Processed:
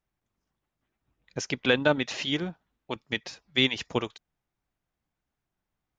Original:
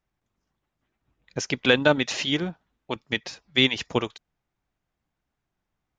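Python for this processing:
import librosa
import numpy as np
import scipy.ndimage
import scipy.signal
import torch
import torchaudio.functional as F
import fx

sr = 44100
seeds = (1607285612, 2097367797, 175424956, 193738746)

y = fx.high_shelf(x, sr, hz=7500.0, db=-10.0, at=(1.54, 2.22))
y = y * librosa.db_to_amplitude(-3.5)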